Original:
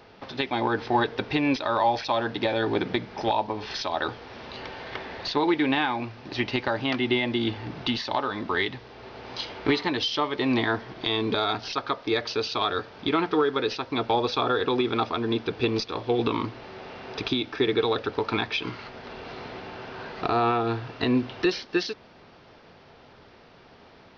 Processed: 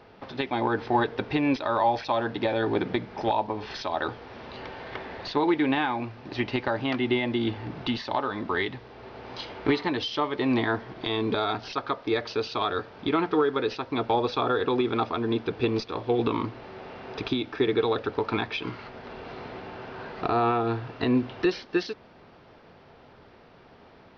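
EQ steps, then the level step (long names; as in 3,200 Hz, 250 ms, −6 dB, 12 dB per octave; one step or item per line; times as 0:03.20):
high-shelf EQ 3,200 Hz −9 dB
0.0 dB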